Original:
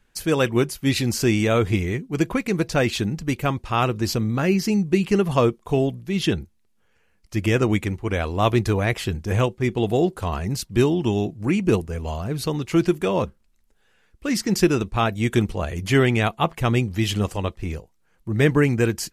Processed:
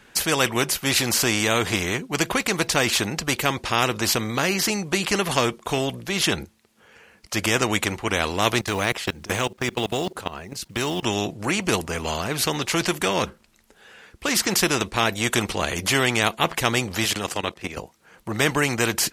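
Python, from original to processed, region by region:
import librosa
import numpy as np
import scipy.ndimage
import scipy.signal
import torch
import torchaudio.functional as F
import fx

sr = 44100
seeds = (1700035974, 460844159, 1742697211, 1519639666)

y = fx.chain(x, sr, fx.level_steps(step_db=23),
    fx.quant_companded(bits=8), at=(8.61, 11.03))
y = fx.chain(y, sr, fx.highpass(hz=180.0, slope=6),
    fx.level_steps(step_db=15), at=(17.05, 17.77))
y = fx.highpass(y, sr, hz=240.0, slope=6)
y = fx.high_shelf(y, sr, hz=9200.0, db=-6.5)
y = fx.spectral_comp(y, sr, ratio=2.0)
y = F.gain(torch.from_numpy(y), 2.0).numpy()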